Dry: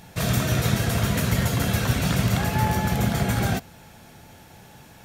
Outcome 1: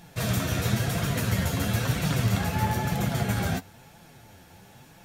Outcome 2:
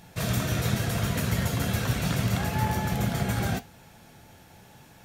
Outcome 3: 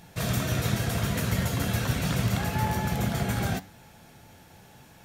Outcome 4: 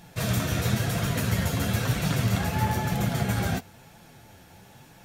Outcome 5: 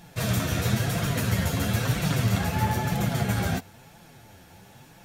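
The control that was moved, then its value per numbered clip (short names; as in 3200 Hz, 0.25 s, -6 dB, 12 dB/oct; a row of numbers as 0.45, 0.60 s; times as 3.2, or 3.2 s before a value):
flange, regen: +30, -72, +84, -21, 0%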